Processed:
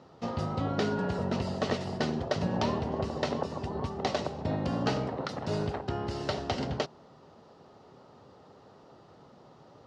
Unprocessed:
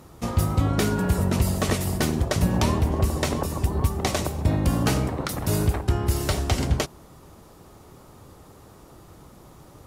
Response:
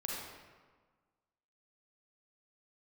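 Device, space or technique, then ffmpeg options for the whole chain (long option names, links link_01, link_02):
kitchen radio: -af "highpass=190,equalizer=frequency=190:width_type=q:width=4:gain=-3,equalizer=frequency=320:width_type=q:width=4:gain=-8,equalizer=frequency=1100:width_type=q:width=4:gain=-5,equalizer=frequency=1600:width_type=q:width=4:gain=-4,equalizer=frequency=2300:width_type=q:width=4:gain=-9,equalizer=frequency=3500:width_type=q:width=4:gain=-5,lowpass=frequency=4500:width=0.5412,lowpass=frequency=4500:width=1.3066,volume=-1.5dB"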